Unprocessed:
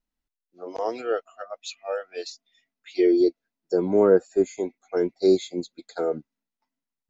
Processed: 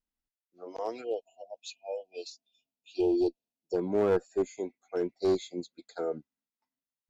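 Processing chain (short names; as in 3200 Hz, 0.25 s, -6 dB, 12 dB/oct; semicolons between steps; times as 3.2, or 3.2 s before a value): one-sided clip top -16 dBFS; spectral delete 1.04–3.76, 960–2400 Hz; gain -7 dB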